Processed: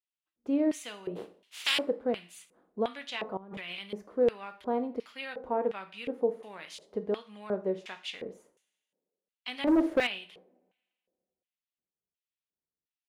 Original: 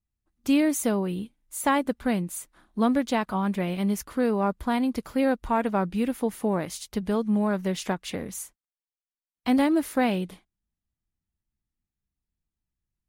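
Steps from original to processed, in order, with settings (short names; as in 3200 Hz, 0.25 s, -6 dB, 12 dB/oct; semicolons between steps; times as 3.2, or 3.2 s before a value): 1.15–1.77 spectral contrast lowered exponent 0.25; two-slope reverb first 0.43 s, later 1.9 s, from -27 dB, DRR 7.5 dB; LFO band-pass square 1.4 Hz 480–2900 Hz; 3.37–3.79 negative-ratio compressor -45 dBFS, ratio -1; 9.67–10.07 sample leveller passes 2; gain +1.5 dB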